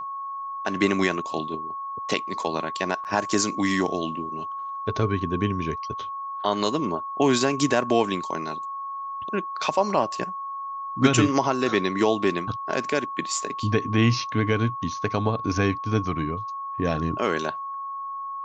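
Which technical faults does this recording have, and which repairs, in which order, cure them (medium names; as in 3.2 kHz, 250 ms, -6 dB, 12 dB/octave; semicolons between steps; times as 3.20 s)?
whine 1.1 kHz -30 dBFS
3.04–3.05 s: dropout 8.5 ms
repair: band-stop 1.1 kHz, Q 30; interpolate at 3.04 s, 8.5 ms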